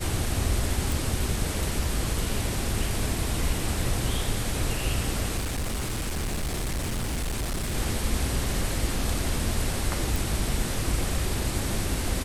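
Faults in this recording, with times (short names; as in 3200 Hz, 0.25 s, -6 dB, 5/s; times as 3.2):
0.92 pop
5.37–7.75 clipped -25.5 dBFS
10.16 pop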